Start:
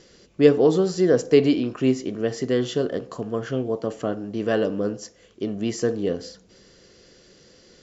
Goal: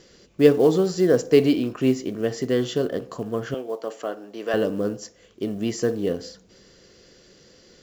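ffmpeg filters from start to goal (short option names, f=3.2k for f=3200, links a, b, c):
-filter_complex "[0:a]asettb=1/sr,asplit=3[a][b][c];[a]atrim=end=3.544[d];[b]atrim=start=3.54:end=4.54,asetpts=PTS-STARTPTS,afade=t=in:d=0.004:c=qsin,afade=t=out:st=0.996:d=0.004:c=qsin,highpass=470[e];[c]atrim=start=4.536[f];[d][e]acrossfade=d=0.004:c1=hsin:c2=qsin[g];[g][f]acrossfade=d=0.004:c1=qsin:c2=hsin,acrusher=bits=8:mode=log:mix=0:aa=0.000001"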